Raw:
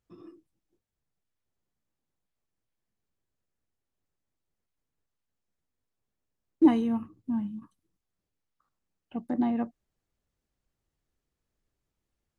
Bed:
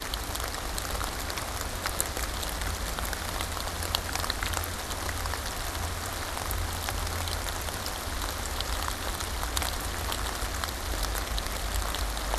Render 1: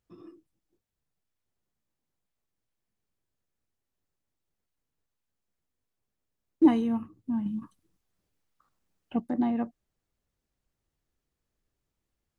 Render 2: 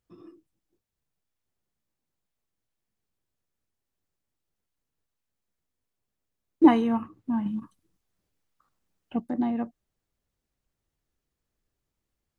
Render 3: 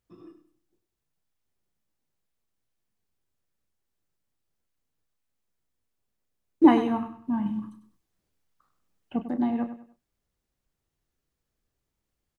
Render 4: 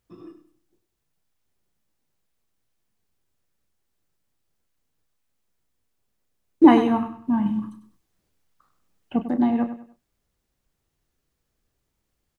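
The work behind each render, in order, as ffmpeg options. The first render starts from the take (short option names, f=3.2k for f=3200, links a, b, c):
-filter_complex "[0:a]asplit=3[a][b][c];[a]atrim=end=7.462[d];[b]atrim=start=7.458:end=9.202,asetpts=PTS-STARTPTS,volume=6dB[e];[c]atrim=start=9.198[f];[d][e]acrossfade=d=0.004:c1=hsin:c2=hsin[g];[g][f]acrossfade=d=0.004:c1=hsin:c2=hsin"
-filter_complex "[0:a]asettb=1/sr,asplit=3[a][b][c];[a]atrim=end=6.644[d];[b]atrim=start=6.64:end=7.6,asetpts=PTS-STARTPTS,afade=t=in:d=0.004:c=qsin,afade=t=out:st=0.956:d=0.004:c=qsin,equalizer=f=1.2k:w=0.4:g=10[e];[c]atrim=start=7.596[f];[d][e]acrossfade=d=0.004:c1=hsin:c2=qsin[g];[g][f]acrossfade=d=0.004:c1=qsin:c2=hsin"
-filter_complex "[0:a]asplit=2[a][b];[b]adelay=33,volume=-11.5dB[c];[a][c]amix=inputs=2:normalize=0,aecho=1:1:98|196|294:0.266|0.0878|0.029"
-af "volume=5.5dB,alimiter=limit=-3dB:level=0:latency=1"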